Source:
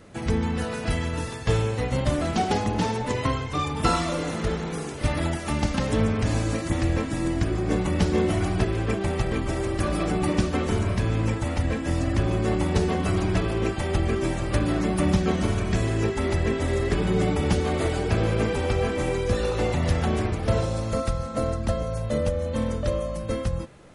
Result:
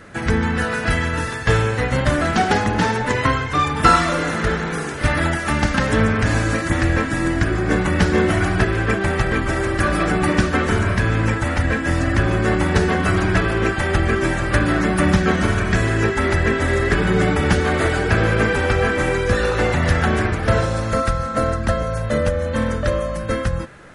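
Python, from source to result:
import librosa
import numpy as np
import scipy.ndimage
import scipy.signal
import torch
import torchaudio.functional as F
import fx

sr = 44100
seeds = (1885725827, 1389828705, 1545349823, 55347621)

y = fx.peak_eq(x, sr, hz=1600.0, db=11.5, octaves=0.78)
y = F.gain(torch.from_numpy(y), 5.0).numpy()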